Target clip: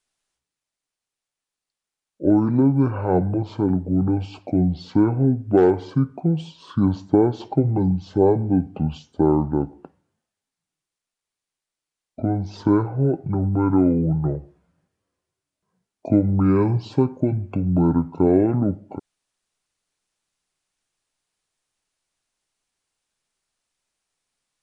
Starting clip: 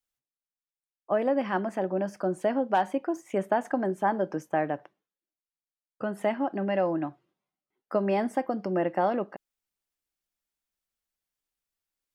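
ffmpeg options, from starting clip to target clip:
ffmpeg -i in.wav -af "asetrate=21741,aresample=44100,volume=8dB" out.wav

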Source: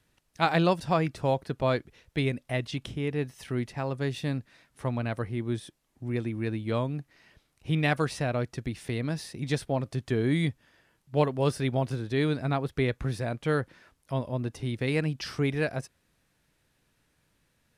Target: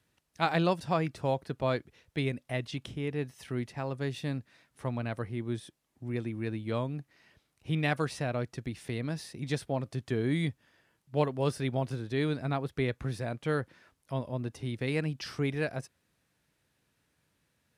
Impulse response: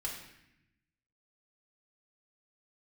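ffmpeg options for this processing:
-af "highpass=61,volume=-3.5dB"

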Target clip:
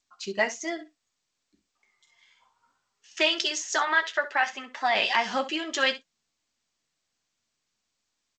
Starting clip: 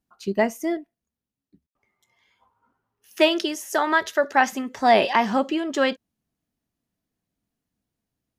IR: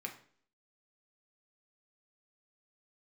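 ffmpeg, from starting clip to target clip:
-filter_complex "[0:a]alimiter=limit=-10.5dB:level=0:latency=1:release=179,asplit=3[link_01][link_02][link_03];[link_01]afade=type=out:start_time=3.78:duration=0.02[link_04];[link_02]highpass=340,lowpass=3300,afade=type=in:start_time=3.78:duration=0.02,afade=type=out:start_time=4.94:duration=0.02[link_05];[link_03]afade=type=in:start_time=4.94:duration=0.02[link_06];[link_04][link_05][link_06]amix=inputs=3:normalize=0,adynamicequalizer=threshold=0.0251:dfrequency=1100:dqfactor=1.2:tfrequency=1100:tqfactor=1.2:attack=5:release=100:ratio=0.375:range=1.5:mode=cutabove:tftype=bell,flanger=delay=2.7:depth=6.9:regen=-32:speed=0.62:shape=triangular,tiltshelf=frequency=840:gain=-9.5,asplit=3[link_07][link_08][link_09];[link_07]afade=type=out:start_time=0.78:duration=0.02[link_10];[link_08]asplit=2[link_11][link_12];[link_12]adelay=46,volume=-8.5dB[link_13];[link_11][link_13]amix=inputs=2:normalize=0,afade=type=in:start_time=0.78:duration=0.02,afade=type=out:start_time=3.22:duration=0.02[link_14];[link_09]afade=type=in:start_time=3.22:duration=0.02[link_15];[link_10][link_14][link_15]amix=inputs=3:normalize=0,aecho=1:1:13|65:0.266|0.178" -ar 16000 -c:a g722

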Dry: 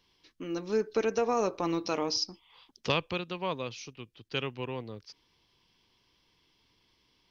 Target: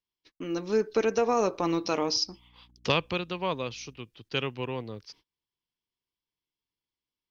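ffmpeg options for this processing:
ffmpeg -i in.wav -filter_complex "[0:a]agate=range=-28dB:threshold=-58dB:ratio=16:detection=peak,asettb=1/sr,asplit=3[link_01][link_02][link_03];[link_01]atrim=end=2.264[link_04];[link_02]atrim=start=2.26:end=3.98,asetpts=PTS-STARTPTS,afade=type=in:duration=0.004:curve=qsin,afade=type=out:start_time=1.716:duration=0.004:curve=qsin,aeval=exprs='val(0)+0.000708*(sin(2*PI*60*n/s)+sin(2*PI*2*60*n/s)/2+sin(2*PI*3*60*n/s)/3+sin(2*PI*4*60*n/s)/4+sin(2*PI*5*60*n/s)/5)':channel_layout=same[link_05];[link_03]atrim=start=3.976[link_06];[link_04][link_05]acrossfade=duration=0.004:curve1=hsin:curve2=qsin[link_07];[link_07][link_06]acrossfade=duration=0.004:curve1=qsin:curve2=hsin,volume=3dB" out.wav

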